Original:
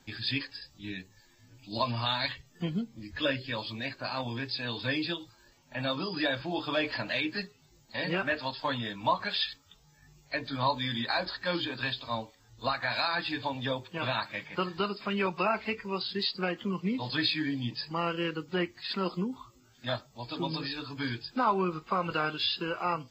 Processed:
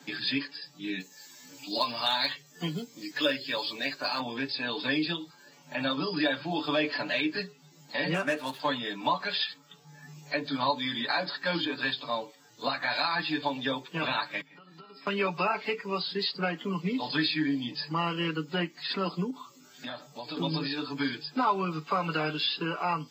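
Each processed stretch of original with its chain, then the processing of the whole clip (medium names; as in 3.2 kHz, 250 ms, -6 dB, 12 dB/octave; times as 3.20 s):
1.00–4.20 s: tone controls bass -7 dB, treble +10 dB + short-mantissa float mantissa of 4-bit + overload inside the chain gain 17 dB
8.14–8.60 s: median filter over 9 samples + treble shelf 11 kHz -4.5 dB
14.41–15.07 s: feedback comb 270 Hz, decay 0.31 s, harmonics odd, mix 90% + compression 16:1, threshold -54 dBFS
19.30–20.37 s: high-pass 60 Hz + compression 4:1, threshold -41 dBFS
whole clip: elliptic high-pass 150 Hz; comb 6.9 ms; three bands compressed up and down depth 40%; trim +1 dB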